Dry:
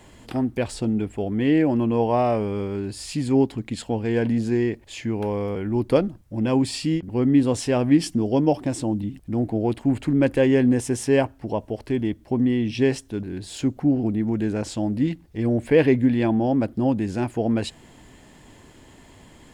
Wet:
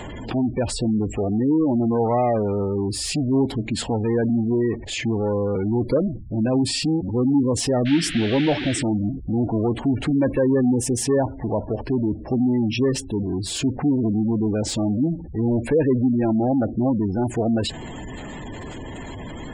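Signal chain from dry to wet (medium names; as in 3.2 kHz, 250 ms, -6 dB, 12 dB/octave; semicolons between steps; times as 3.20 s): power-law waveshaper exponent 0.5; spectral gate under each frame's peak -20 dB strong; 7.85–8.81 s: band noise 1.5–3.7 kHz -27 dBFS; trim -5.5 dB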